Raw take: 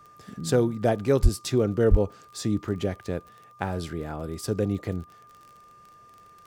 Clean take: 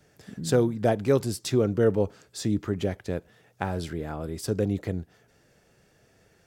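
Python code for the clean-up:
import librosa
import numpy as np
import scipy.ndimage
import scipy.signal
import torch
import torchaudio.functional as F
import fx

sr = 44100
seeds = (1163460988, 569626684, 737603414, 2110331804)

y = fx.fix_declick_ar(x, sr, threshold=6.5)
y = fx.notch(y, sr, hz=1200.0, q=30.0)
y = fx.highpass(y, sr, hz=140.0, slope=24, at=(1.22, 1.34), fade=0.02)
y = fx.highpass(y, sr, hz=140.0, slope=24, at=(1.9, 2.02), fade=0.02)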